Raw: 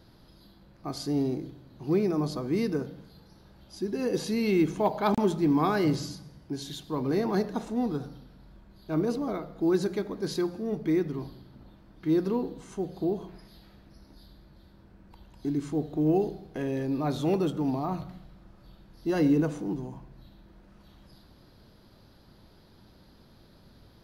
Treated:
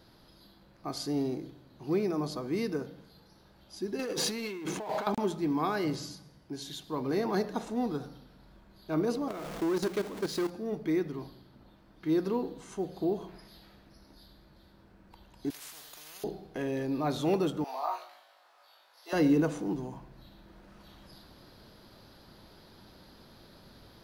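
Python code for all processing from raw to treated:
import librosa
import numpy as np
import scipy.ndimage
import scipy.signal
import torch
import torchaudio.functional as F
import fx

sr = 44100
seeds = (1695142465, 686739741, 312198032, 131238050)

y = fx.chain(x, sr, fx.highpass(hz=280.0, slope=6),
    fx.over_compress(threshold_db=-36.0, ratio=-1.0),
    fx.power_curve(exponent=0.7), at=(3.99, 5.07))
y = fx.chain(y, sr, fx.zero_step(step_db=-35.0),
    fx.level_steps(step_db=14),
    fx.leveller(passes=1), at=(9.28, 10.5))
y = fx.chain(y, sr, fx.pre_emphasis(coefficient=0.9),
    fx.spectral_comp(ratio=10.0), at=(15.5, 16.24))
y = fx.chain(y, sr, fx.highpass(hz=640.0, slope=24),
    fx.room_flutter(wall_m=3.3, rt60_s=0.3), at=(17.64, 19.13))
y = fx.low_shelf(y, sr, hz=270.0, db=-7.5)
y = fx.rider(y, sr, range_db=10, speed_s=2.0)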